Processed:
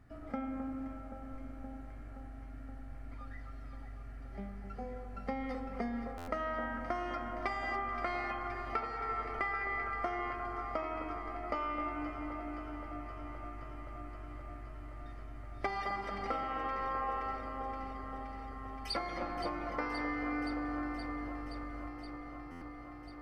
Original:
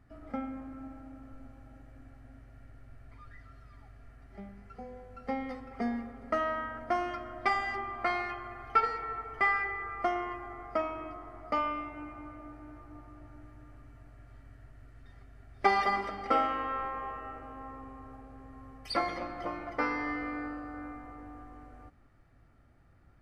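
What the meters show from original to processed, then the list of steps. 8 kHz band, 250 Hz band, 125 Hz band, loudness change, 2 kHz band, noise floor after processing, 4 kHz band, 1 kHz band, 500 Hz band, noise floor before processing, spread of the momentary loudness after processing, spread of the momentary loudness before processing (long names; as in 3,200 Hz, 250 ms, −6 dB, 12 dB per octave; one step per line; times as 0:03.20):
can't be measured, −0.5 dB, +3.0 dB, −6.5 dB, −5.0 dB, −47 dBFS, −3.0 dB, −4.5 dB, −3.5 dB, −60 dBFS, 13 LU, 22 LU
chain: downward compressor 10 to 1, threshold −35 dBFS, peak gain reduction 15.5 dB
delay that swaps between a low-pass and a high-pass 261 ms, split 1,600 Hz, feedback 89%, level −9.5 dB
buffer that repeats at 0:06.17/0:22.51, samples 512, times 8
level +1.5 dB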